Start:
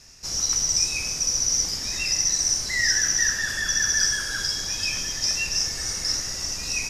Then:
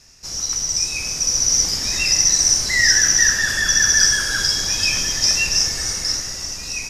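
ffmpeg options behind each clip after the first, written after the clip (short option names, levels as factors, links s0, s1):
-af "dynaudnorm=f=200:g=13:m=3.76"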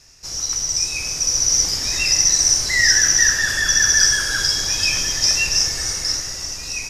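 -af "equalizer=f=210:t=o:w=0.35:g=-7"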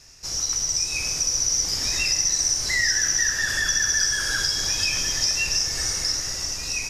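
-af "acompressor=threshold=0.0794:ratio=2.5"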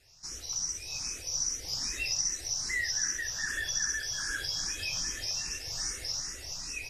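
-filter_complex "[0:a]asplit=2[s0][s1];[s1]afreqshift=2.5[s2];[s0][s2]amix=inputs=2:normalize=1,volume=0.422"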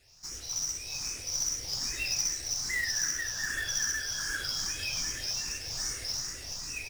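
-filter_complex "[0:a]equalizer=f=13000:w=6.5:g=-13,asplit=5[s0][s1][s2][s3][s4];[s1]adelay=105,afreqshift=-140,volume=0.282[s5];[s2]adelay=210,afreqshift=-280,volume=0.101[s6];[s3]adelay=315,afreqshift=-420,volume=0.0367[s7];[s4]adelay=420,afreqshift=-560,volume=0.0132[s8];[s0][s5][s6][s7][s8]amix=inputs=5:normalize=0,acrusher=bits=3:mode=log:mix=0:aa=0.000001"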